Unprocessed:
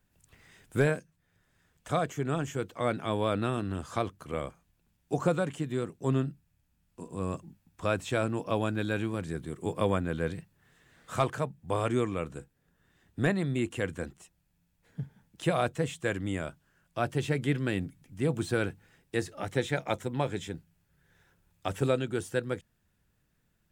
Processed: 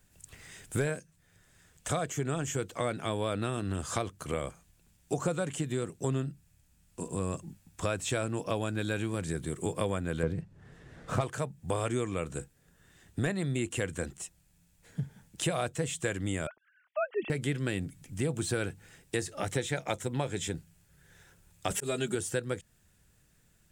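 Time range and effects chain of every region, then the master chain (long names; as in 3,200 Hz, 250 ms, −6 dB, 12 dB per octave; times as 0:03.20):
0:10.23–0:11.21: low-pass filter 7,200 Hz + tilt shelving filter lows +8.5 dB, about 1,400 Hz + windowed peak hold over 3 samples
0:16.47–0:17.30: three sine waves on the formant tracks + high-frequency loss of the air 290 metres
0:21.70–0:22.15: high-shelf EQ 6,000 Hz +7 dB + comb filter 4.9 ms, depth 94% + volume swells 273 ms
whole clip: octave-band graphic EQ 250/1,000/8,000 Hz −3/−3/+8 dB; downward compressor 3 to 1, threshold −37 dBFS; level +7 dB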